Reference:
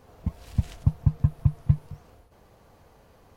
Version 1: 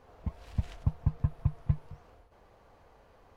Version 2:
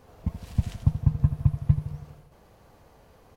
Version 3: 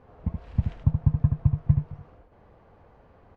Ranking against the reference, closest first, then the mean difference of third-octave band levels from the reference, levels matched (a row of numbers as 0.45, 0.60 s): 2, 1, 3; 2.0, 3.0, 4.0 dB